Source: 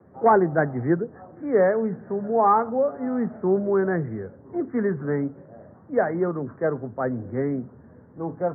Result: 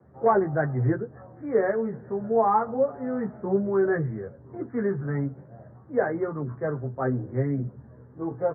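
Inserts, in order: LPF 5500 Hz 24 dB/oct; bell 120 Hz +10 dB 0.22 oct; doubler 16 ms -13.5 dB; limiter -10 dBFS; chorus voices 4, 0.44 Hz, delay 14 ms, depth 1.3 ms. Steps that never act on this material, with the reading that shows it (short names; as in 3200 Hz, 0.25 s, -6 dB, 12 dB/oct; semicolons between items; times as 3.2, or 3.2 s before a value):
LPF 5500 Hz: input band ends at 1900 Hz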